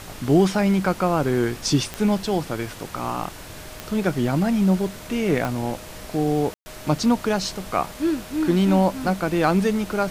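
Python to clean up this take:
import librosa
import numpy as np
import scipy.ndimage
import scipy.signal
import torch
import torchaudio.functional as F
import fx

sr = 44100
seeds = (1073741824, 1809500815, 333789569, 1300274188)

y = fx.fix_declick_ar(x, sr, threshold=10.0)
y = fx.notch(y, sr, hz=620.0, q=30.0)
y = fx.fix_ambience(y, sr, seeds[0], print_start_s=3.3, print_end_s=3.8, start_s=6.54, end_s=6.66)
y = fx.noise_reduce(y, sr, print_start_s=3.3, print_end_s=3.8, reduce_db=28.0)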